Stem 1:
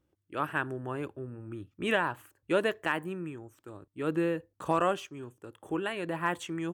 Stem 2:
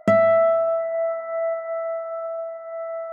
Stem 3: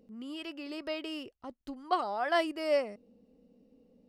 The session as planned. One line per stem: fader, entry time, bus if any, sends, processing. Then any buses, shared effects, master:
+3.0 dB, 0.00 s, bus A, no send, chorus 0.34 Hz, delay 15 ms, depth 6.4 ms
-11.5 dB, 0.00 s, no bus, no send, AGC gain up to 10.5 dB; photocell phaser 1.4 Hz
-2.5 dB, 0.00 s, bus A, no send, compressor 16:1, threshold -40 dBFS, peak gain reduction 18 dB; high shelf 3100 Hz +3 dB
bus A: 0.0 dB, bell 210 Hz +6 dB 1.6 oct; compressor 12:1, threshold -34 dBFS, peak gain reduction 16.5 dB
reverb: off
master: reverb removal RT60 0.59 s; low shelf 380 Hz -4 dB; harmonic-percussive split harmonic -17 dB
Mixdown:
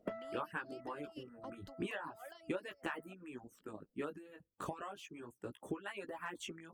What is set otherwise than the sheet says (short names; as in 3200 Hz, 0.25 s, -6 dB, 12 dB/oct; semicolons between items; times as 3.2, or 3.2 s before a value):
stem 2: missing AGC gain up to 10.5 dB; stem 3: missing high shelf 3100 Hz +3 dB; master: missing low shelf 380 Hz -4 dB